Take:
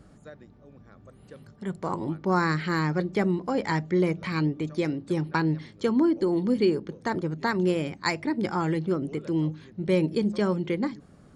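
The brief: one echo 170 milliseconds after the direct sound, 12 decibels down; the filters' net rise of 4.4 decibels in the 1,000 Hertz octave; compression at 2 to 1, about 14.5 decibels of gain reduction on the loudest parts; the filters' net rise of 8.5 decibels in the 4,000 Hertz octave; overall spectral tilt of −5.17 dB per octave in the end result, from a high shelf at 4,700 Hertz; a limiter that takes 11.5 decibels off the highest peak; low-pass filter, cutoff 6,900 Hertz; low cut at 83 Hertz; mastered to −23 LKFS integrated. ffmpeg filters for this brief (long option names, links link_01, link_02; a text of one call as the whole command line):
ffmpeg -i in.wav -af "highpass=83,lowpass=6900,equalizer=frequency=1000:width_type=o:gain=4.5,equalizer=frequency=4000:width_type=o:gain=8,highshelf=frequency=4700:gain=4.5,acompressor=threshold=-45dB:ratio=2,alimiter=level_in=7dB:limit=-24dB:level=0:latency=1,volume=-7dB,aecho=1:1:170:0.251,volume=18.5dB" out.wav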